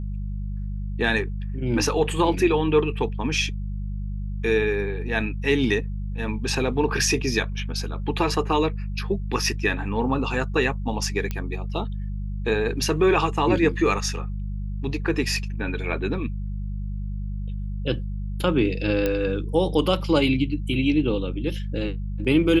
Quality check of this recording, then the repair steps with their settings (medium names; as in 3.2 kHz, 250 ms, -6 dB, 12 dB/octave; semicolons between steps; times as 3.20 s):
hum 50 Hz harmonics 4 -29 dBFS
11.31 s: pop -14 dBFS
19.06 s: pop -11 dBFS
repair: de-click; de-hum 50 Hz, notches 4